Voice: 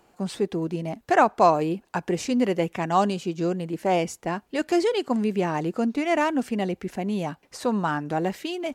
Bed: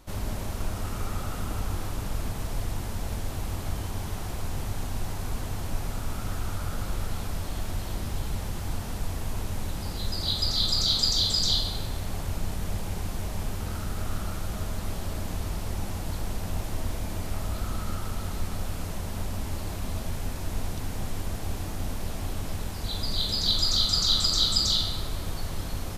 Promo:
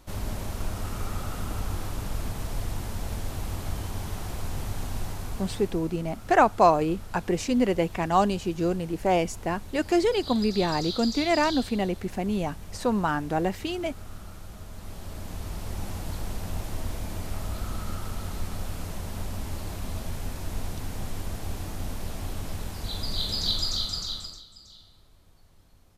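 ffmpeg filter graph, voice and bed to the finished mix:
-filter_complex "[0:a]adelay=5200,volume=-0.5dB[a];[1:a]volume=8.5dB,afade=t=out:st=4.98:d=0.94:silence=0.316228,afade=t=in:st=14.68:d=1.21:silence=0.354813,afade=t=out:st=23.43:d=1:silence=0.0562341[b];[a][b]amix=inputs=2:normalize=0"

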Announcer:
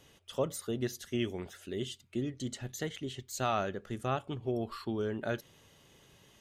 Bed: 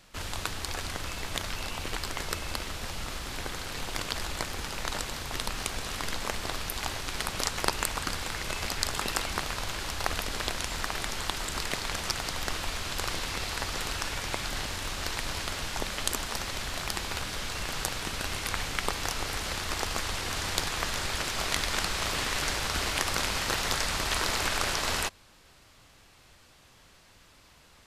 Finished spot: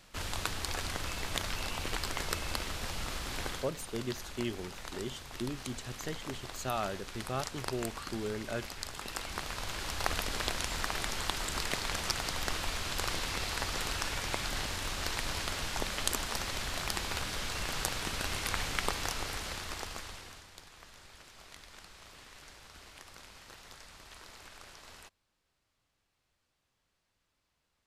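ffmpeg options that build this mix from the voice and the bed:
-filter_complex "[0:a]adelay=3250,volume=-3dB[a];[1:a]volume=7.5dB,afade=t=out:st=3.48:d=0.23:silence=0.334965,afade=t=in:st=9:d=1.08:silence=0.354813,afade=t=out:st=18.81:d=1.66:silence=0.0891251[b];[a][b]amix=inputs=2:normalize=0"

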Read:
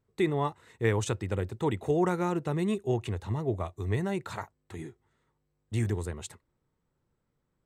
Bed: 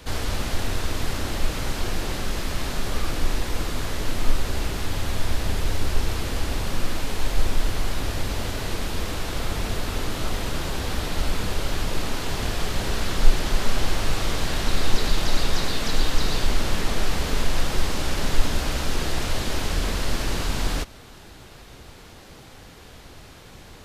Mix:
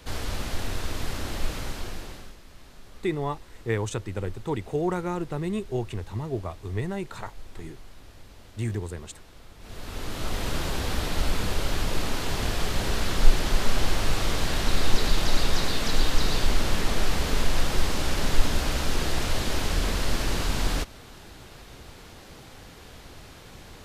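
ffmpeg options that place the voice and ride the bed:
-filter_complex "[0:a]adelay=2850,volume=-0.5dB[a];[1:a]volume=16.5dB,afade=t=out:st=1.51:d=0.86:silence=0.133352,afade=t=in:st=9.59:d=0.93:silence=0.0891251[b];[a][b]amix=inputs=2:normalize=0"

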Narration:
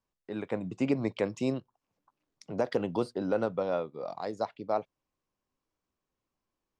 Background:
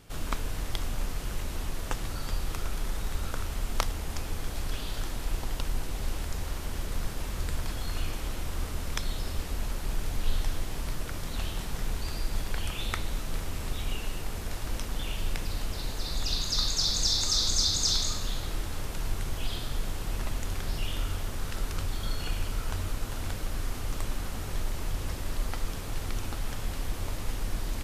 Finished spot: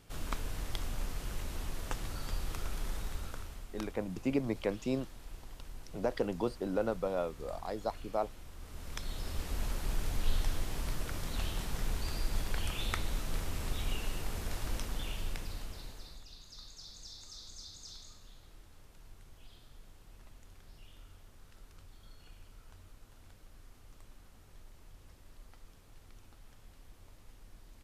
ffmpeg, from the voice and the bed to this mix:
-filter_complex "[0:a]adelay=3450,volume=-3.5dB[a];[1:a]volume=8dB,afade=t=out:st=2.94:d=0.74:silence=0.281838,afade=t=in:st=8.6:d=1.04:silence=0.211349,afade=t=out:st=14.64:d=1.62:silence=0.0944061[b];[a][b]amix=inputs=2:normalize=0"

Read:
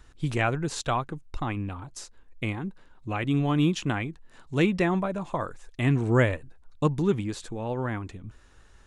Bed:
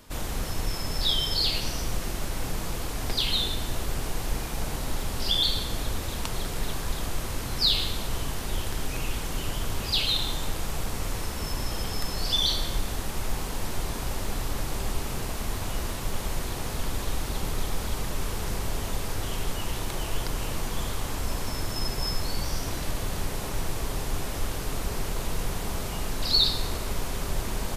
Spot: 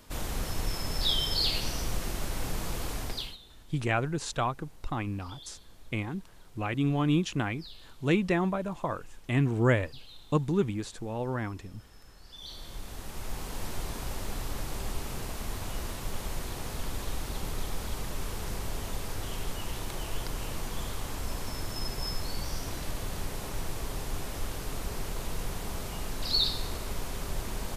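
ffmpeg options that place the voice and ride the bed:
-filter_complex "[0:a]adelay=3500,volume=-2.5dB[a];[1:a]volume=18.5dB,afade=t=out:st=2.93:d=0.44:silence=0.0668344,afade=t=in:st=12.32:d=1.3:silence=0.0891251[b];[a][b]amix=inputs=2:normalize=0"

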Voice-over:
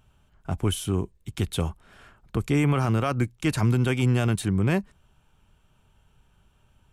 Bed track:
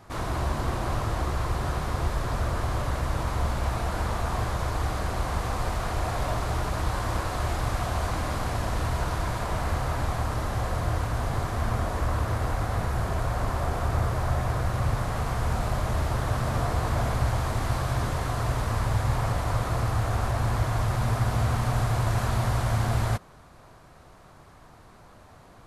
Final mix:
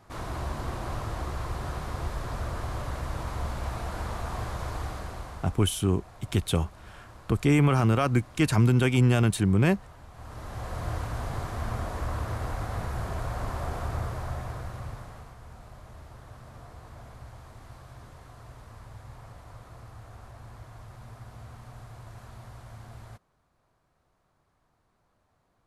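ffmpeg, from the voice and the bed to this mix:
-filter_complex "[0:a]adelay=4950,volume=1dB[a];[1:a]volume=11dB,afade=t=out:st=4.75:d=0.87:silence=0.158489,afade=t=in:st=10.12:d=0.78:silence=0.149624,afade=t=out:st=13.76:d=1.6:silence=0.16788[b];[a][b]amix=inputs=2:normalize=0"

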